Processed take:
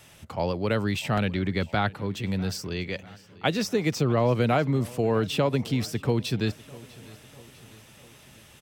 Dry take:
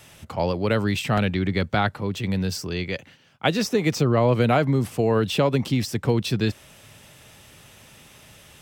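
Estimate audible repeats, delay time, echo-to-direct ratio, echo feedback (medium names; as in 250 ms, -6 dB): 3, 647 ms, -20.0 dB, 55%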